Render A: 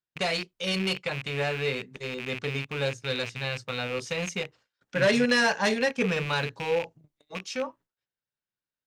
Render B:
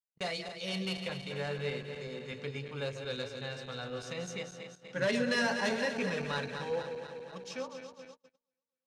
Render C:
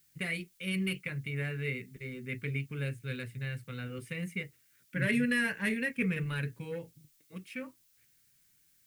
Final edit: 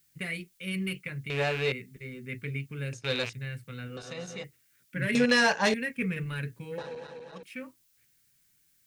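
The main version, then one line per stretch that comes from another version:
C
0:01.30–0:01.72: punch in from A
0:02.93–0:03.33: punch in from A
0:03.97–0:04.44: punch in from B
0:05.15–0:05.74: punch in from A
0:06.78–0:07.43: punch in from B

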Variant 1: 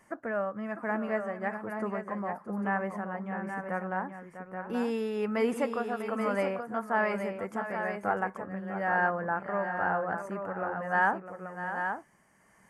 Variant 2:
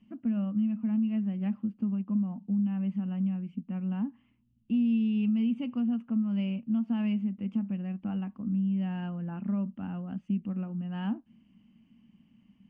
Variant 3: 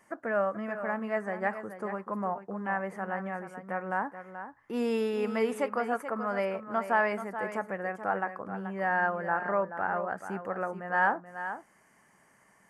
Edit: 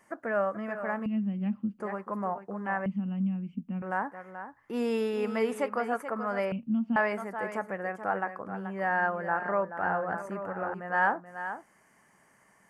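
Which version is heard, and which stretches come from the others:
3
0:01.06–0:01.80: punch in from 2
0:02.86–0:03.82: punch in from 2
0:06.52–0:06.96: punch in from 2
0:09.83–0:10.74: punch in from 1

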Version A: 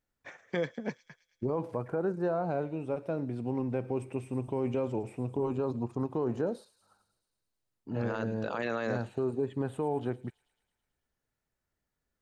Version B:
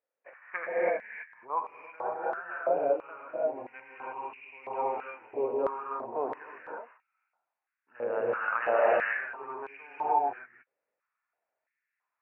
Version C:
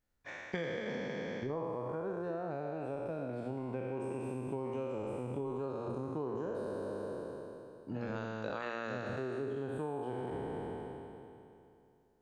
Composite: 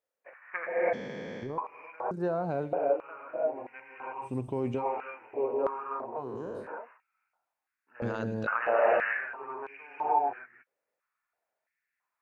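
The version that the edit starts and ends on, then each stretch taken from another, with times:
B
0:00.93–0:01.58: punch in from C
0:02.11–0:02.73: punch in from A
0:04.26–0:04.81: punch in from A, crossfade 0.10 s
0:06.20–0:06.64: punch in from C, crossfade 0.10 s
0:08.02–0:08.47: punch in from A

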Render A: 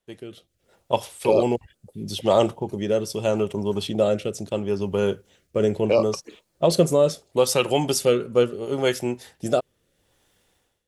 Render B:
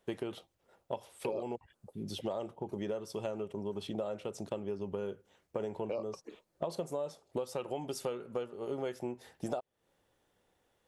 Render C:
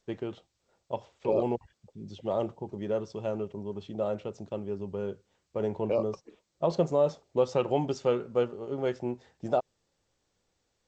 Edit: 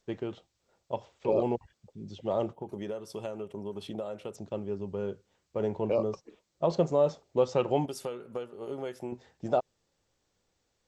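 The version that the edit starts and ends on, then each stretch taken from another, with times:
C
0:02.53–0:04.36: punch in from B
0:07.86–0:09.12: punch in from B
not used: A

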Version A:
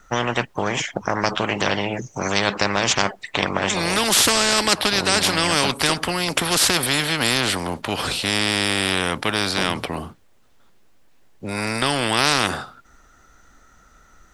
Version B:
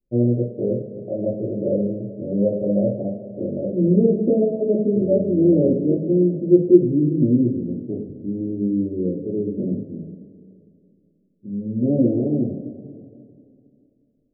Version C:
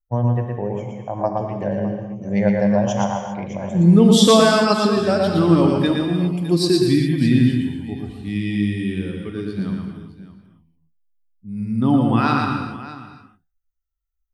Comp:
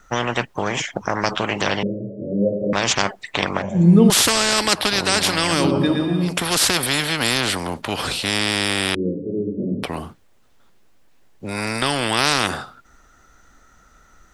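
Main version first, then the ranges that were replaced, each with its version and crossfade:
A
0:01.83–0:02.73: punch in from B
0:03.62–0:04.10: punch in from C
0:05.62–0:06.32: punch in from C, crossfade 0.24 s
0:08.95–0:09.83: punch in from B

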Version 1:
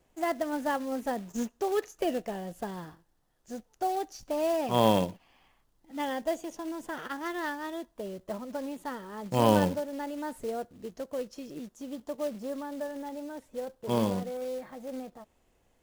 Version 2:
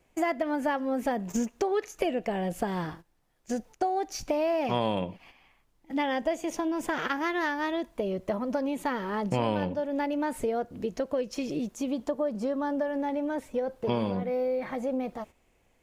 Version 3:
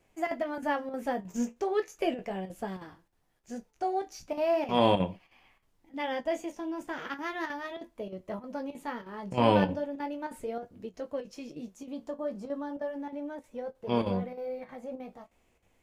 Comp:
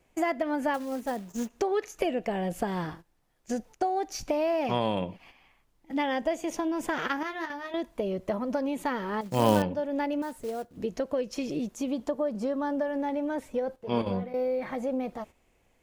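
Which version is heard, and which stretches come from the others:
2
0:00.74–0:01.50: punch in from 1
0:07.23–0:07.74: punch in from 3
0:09.21–0:09.62: punch in from 1
0:10.22–0:10.77: punch in from 1
0:13.76–0:14.34: punch in from 3

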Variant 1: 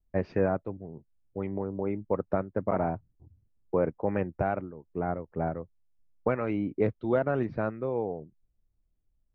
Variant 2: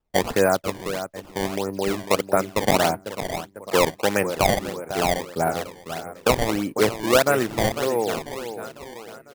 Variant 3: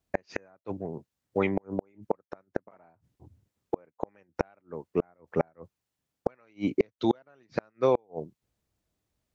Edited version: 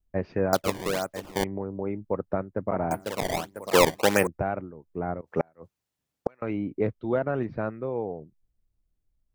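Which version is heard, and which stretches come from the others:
1
0:00.53–0:01.44: punch in from 2
0:02.91–0:04.27: punch in from 2
0:05.21–0:06.42: punch in from 3

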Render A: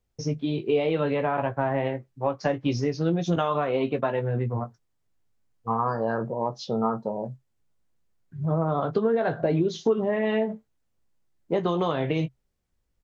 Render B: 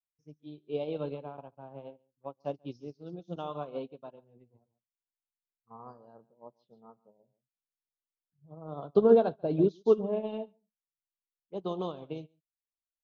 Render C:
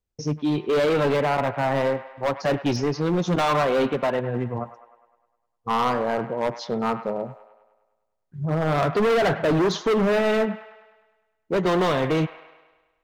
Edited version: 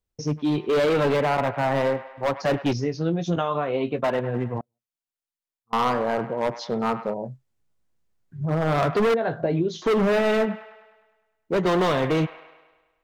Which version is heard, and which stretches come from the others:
C
0:02.73–0:04.04: punch in from A
0:04.61–0:05.73: punch in from B
0:07.14–0:08.41: punch in from A
0:09.14–0:09.82: punch in from A

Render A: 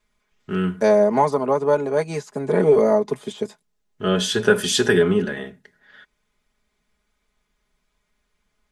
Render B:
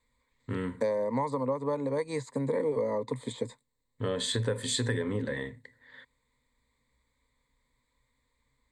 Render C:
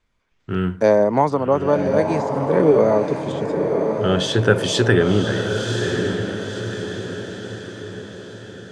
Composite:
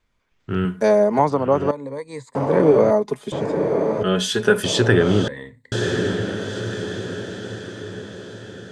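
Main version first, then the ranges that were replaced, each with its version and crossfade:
C
0:00.65–0:01.19: punch in from A
0:01.71–0:02.35: punch in from B
0:02.91–0:03.32: punch in from A
0:04.03–0:04.64: punch in from A
0:05.28–0:05.72: punch in from B

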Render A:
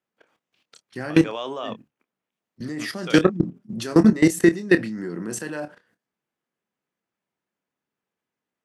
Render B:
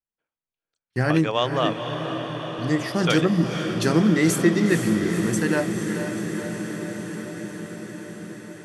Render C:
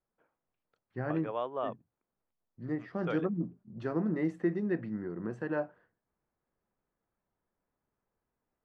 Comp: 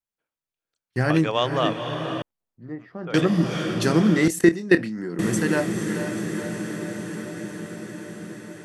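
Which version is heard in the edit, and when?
B
0:02.22–0:03.14: punch in from C
0:04.28–0:05.19: punch in from A

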